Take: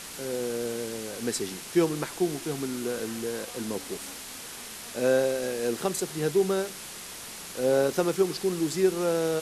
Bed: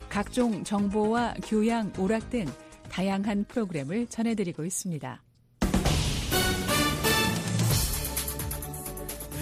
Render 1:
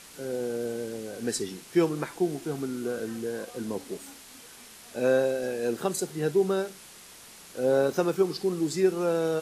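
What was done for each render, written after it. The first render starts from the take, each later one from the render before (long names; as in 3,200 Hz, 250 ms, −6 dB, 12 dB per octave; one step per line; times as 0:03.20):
noise reduction from a noise print 8 dB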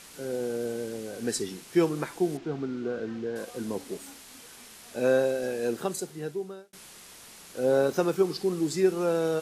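0:02.37–0:03.36: high-frequency loss of the air 180 metres
0:05.63–0:06.73: fade out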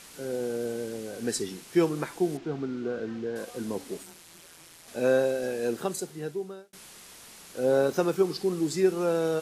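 0:04.03–0:04.88: ring modulation 84 Hz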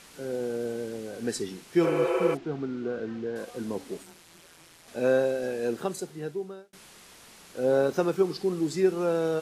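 high-shelf EQ 5,600 Hz −6.5 dB
0:01.86–0:02.32: healed spectral selection 360–3,100 Hz before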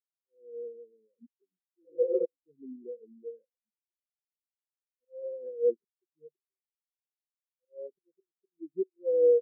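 volume swells 403 ms
every bin expanded away from the loudest bin 4 to 1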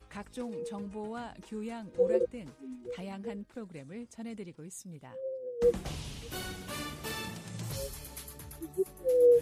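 mix in bed −14 dB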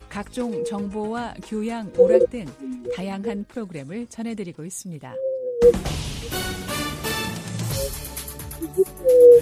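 level +12 dB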